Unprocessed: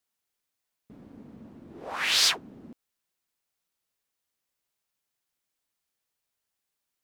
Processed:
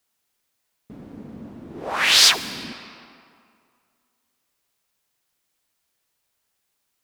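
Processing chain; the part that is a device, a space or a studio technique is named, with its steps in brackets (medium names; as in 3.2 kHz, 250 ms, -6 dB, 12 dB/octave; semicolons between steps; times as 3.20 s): saturated reverb return (on a send at -8 dB: reverberation RT60 2.2 s, pre-delay 52 ms + saturation -30.5 dBFS, distortion -7 dB); on the sum: trim +8.5 dB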